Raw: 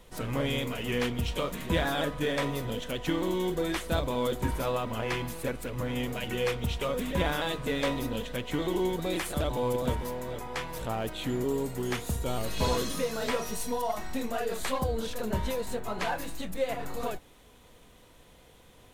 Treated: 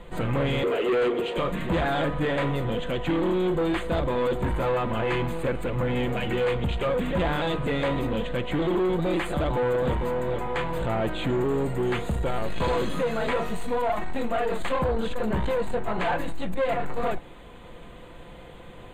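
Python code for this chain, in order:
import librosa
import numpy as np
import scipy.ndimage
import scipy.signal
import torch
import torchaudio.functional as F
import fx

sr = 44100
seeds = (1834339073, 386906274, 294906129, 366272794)

p1 = x + 0.34 * np.pad(x, (int(5.8 * sr / 1000.0), 0))[:len(x)]
p2 = fx.rider(p1, sr, range_db=10, speed_s=2.0)
p3 = p1 + (p2 * librosa.db_to_amplitude(2.5))
p4 = fx.highpass_res(p3, sr, hz=400.0, q=4.9, at=(0.63, 1.37))
p5 = 10.0 ** (-22.5 / 20.0) * np.tanh(p4 / 10.0 ** (-22.5 / 20.0))
p6 = scipy.signal.lfilter(np.full(8, 1.0 / 8), 1.0, p5)
y = p6 * librosa.db_to_amplitude(2.0)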